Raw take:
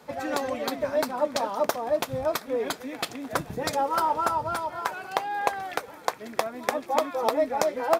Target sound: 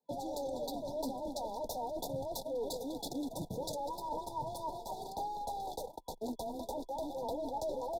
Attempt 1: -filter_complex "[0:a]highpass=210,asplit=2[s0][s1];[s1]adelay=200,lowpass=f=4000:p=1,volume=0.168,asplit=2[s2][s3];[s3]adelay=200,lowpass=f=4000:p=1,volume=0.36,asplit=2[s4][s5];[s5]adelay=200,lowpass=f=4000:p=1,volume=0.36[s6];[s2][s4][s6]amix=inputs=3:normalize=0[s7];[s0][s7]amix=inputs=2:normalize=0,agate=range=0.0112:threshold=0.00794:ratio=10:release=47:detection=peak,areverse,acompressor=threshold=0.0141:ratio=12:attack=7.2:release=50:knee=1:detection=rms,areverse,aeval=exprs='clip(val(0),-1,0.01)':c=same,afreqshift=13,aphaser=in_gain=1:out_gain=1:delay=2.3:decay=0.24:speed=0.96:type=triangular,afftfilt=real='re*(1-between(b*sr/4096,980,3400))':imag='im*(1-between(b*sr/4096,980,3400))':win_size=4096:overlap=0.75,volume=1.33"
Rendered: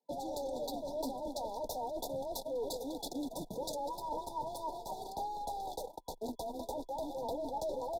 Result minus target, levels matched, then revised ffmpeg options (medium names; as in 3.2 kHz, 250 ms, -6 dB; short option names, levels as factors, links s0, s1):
125 Hz band -4.5 dB
-filter_complex "[0:a]highpass=59,asplit=2[s0][s1];[s1]adelay=200,lowpass=f=4000:p=1,volume=0.168,asplit=2[s2][s3];[s3]adelay=200,lowpass=f=4000:p=1,volume=0.36,asplit=2[s4][s5];[s5]adelay=200,lowpass=f=4000:p=1,volume=0.36[s6];[s2][s4][s6]amix=inputs=3:normalize=0[s7];[s0][s7]amix=inputs=2:normalize=0,agate=range=0.0112:threshold=0.00794:ratio=10:release=47:detection=peak,areverse,acompressor=threshold=0.0141:ratio=12:attack=7.2:release=50:knee=1:detection=rms,areverse,aeval=exprs='clip(val(0),-1,0.01)':c=same,afreqshift=13,aphaser=in_gain=1:out_gain=1:delay=2.3:decay=0.24:speed=0.96:type=triangular,afftfilt=real='re*(1-between(b*sr/4096,980,3400))':imag='im*(1-between(b*sr/4096,980,3400))':win_size=4096:overlap=0.75,volume=1.33"